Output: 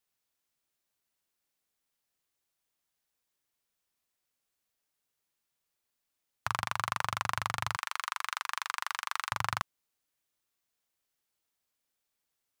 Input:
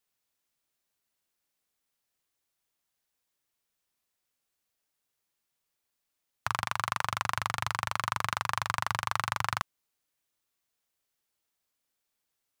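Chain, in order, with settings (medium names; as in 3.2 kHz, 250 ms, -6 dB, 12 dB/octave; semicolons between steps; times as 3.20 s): 7.76–9.32 s: high-pass 1.2 kHz 12 dB/octave; trim -1.5 dB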